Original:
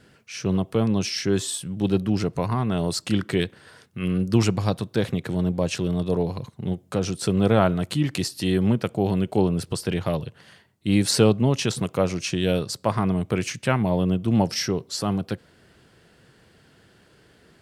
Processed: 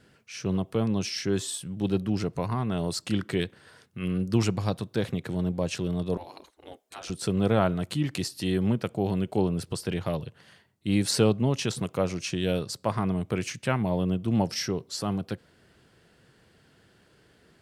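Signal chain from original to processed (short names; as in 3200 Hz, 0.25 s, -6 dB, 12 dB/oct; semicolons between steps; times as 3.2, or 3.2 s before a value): 6.17–7.1 spectral gate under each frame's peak -15 dB weak; gain -4.5 dB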